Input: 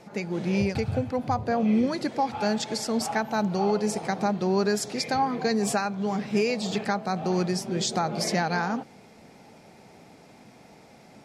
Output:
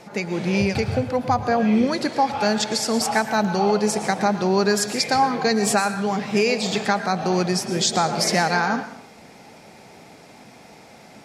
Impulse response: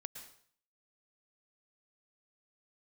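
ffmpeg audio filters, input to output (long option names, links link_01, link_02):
-filter_complex "[0:a]asplit=2[link_01][link_02];[1:a]atrim=start_sample=2205,lowshelf=frequency=420:gain=-11[link_03];[link_02][link_03]afir=irnorm=-1:irlink=0,volume=8dB[link_04];[link_01][link_04]amix=inputs=2:normalize=0"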